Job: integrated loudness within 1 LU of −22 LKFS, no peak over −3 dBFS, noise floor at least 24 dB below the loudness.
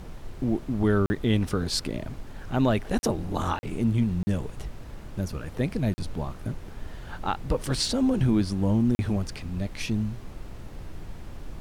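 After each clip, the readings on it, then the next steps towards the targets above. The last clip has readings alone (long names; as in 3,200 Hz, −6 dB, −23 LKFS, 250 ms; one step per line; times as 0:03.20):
number of dropouts 6; longest dropout 40 ms; background noise floor −42 dBFS; target noise floor −52 dBFS; integrated loudness −27.5 LKFS; sample peak −12.5 dBFS; target loudness −22.0 LKFS
→ repair the gap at 0:01.06/0:02.99/0:03.59/0:04.23/0:05.94/0:08.95, 40 ms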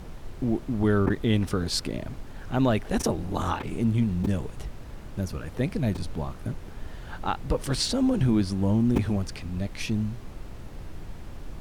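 number of dropouts 0; background noise floor −41 dBFS; target noise floor −52 dBFS
→ noise reduction from a noise print 11 dB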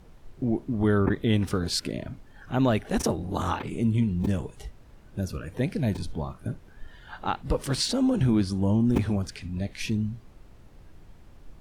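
background noise floor −51 dBFS; target noise floor −52 dBFS
→ noise reduction from a noise print 6 dB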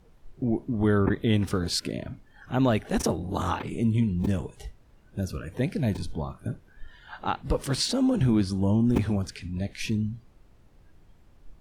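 background noise floor −57 dBFS; integrated loudness −27.5 LKFS; sample peak −9.0 dBFS; target loudness −22.0 LKFS
→ level +5.5 dB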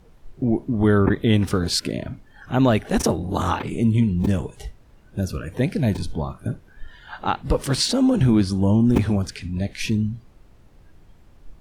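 integrated loudness −22.0 LKFS; sample peak −3.5 dBFS; background noise floor −51 dBFS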